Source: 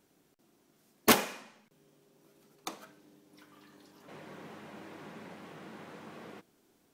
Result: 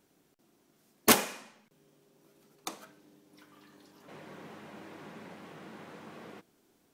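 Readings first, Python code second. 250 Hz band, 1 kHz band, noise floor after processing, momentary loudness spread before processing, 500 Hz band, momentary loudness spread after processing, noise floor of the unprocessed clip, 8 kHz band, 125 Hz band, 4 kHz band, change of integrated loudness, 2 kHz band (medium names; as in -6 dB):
0.0 dB, 0.0 dB, -70 dBFS, 23 LU, 0.0 dB, 24 LU, -70 dBFS, +4.0 dB, 0.0 dB, +1.0 dB, +1.5 dB, +0.5 dB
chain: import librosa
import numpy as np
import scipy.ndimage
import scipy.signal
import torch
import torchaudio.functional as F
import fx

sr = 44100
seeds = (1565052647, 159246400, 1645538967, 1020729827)

y = fx.dynamic_eq(x, sr, hz=9200.0, q=0.77, threshold_db=-56.0, ratio=4.0, max_db=5)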